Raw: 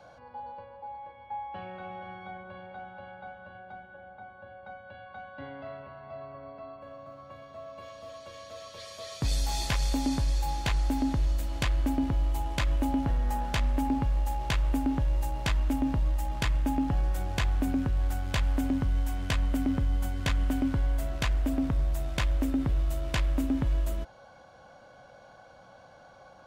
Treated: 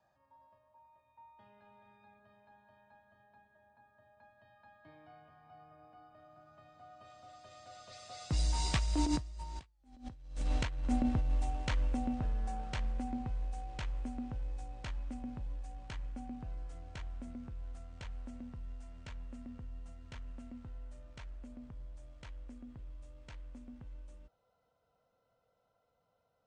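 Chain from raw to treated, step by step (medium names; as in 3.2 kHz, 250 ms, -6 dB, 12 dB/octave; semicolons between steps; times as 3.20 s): Doppler pass-by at 9.78 s, 34 m/s, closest 3.6 m; bass shelf 190 Hz +2.5 dB; compressor with a negative ratio -45 dBFS, ratio -0.5; brick-wall FIR low-pass 9.6 kHz; trim +10.5 dB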